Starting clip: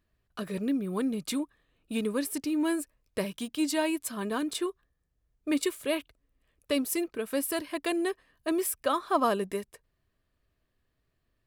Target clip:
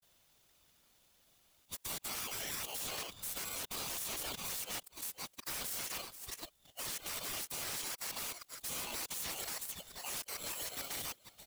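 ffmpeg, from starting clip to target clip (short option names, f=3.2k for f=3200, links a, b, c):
-filter_complex "[0:a]areverse,highpass=f=1k:w=0.5412,highpass=f=1k:w=1.3066,highshelf=f=4.2k:g=9,aecho=1:1:476:0.0708,acrossover=split=1400|7800[a][b][c];[a]acompressor=threshold=-41dB:ratio=4[d];[b]acompressor=threshold=-42dB:ratio=4[e];[c]acompressor=threshold=-46dB:ratio=4[f];[d][e][f]amix=inputs=3:normalize=0,afftfilt=real='hypot(re,im)*cos(2*PI*random(0))':imag='hypot(re,im)*sin(2*PI*random(1))':win_size=512:overlap=0.75,afftfilt=real='re*lt(hypot(re,im),0.00794)':imag='im*lt(hypot(re,im),0.00794)':win_size=1024:overlap=0.75,acontrast=23,alimiter=level_in=20dB:limit=-24dB:level=0:latency=1:release=24,volume=-20dB,aeval=exprs='val(0)*sgn(sin(2*PI*1800*n/s))':c=same,volume=13dB"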